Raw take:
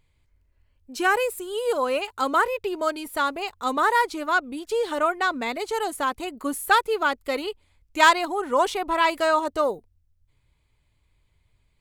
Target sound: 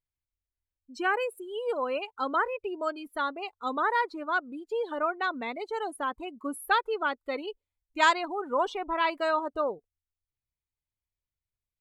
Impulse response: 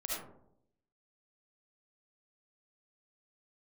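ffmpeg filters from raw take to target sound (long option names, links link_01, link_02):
-af "afftdn=noise_reduction=22:noise_floor=-33,volume=-6dB"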